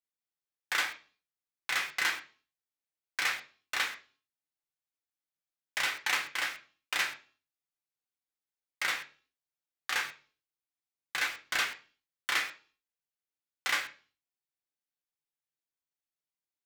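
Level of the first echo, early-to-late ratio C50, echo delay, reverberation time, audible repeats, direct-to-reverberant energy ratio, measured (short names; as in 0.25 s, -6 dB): none, 13.5 dB, none, 0.40 s, none, 2.0 dB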